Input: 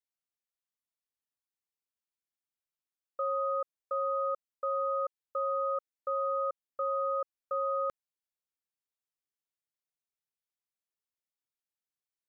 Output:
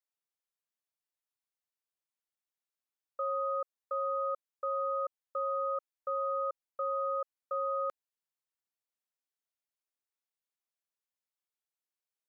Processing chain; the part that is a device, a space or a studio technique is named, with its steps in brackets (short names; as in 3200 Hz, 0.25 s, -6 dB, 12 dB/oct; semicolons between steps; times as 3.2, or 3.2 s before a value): filter by subtraction (in parallel: LPF 660 Hz 12 dB/oct + phase invert); on the sum: gain -3 dB